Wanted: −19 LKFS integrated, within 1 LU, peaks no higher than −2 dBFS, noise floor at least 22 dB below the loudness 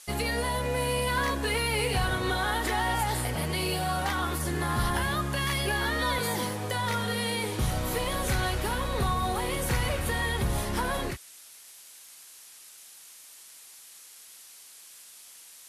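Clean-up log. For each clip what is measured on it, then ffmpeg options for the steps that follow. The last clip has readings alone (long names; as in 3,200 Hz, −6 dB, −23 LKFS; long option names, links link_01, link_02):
background noise floor −50 dBFS; target noise floor −51 dBFS; integrated loudness −28.5 LKFS; sample peak −17.5 dBFS; target loudness −19.0 LKFS
→ -af "afftdn=noise_reduction=6:noise_floor=-50"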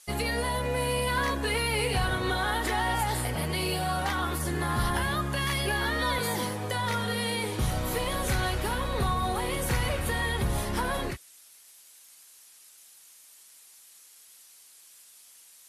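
background noise floor −54 dBFS; integrated loudness −28.5 LKFS; sample peak −17.5 dBFS; target loudness −19.0 LKFS
→ -af "volume=9.5dB"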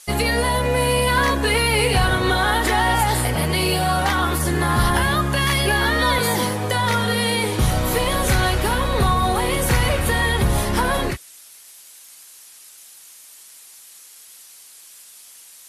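integrated loudness −19.0 LKFS; sample peak −8.0 dBFS; background noise floor −45 dBFS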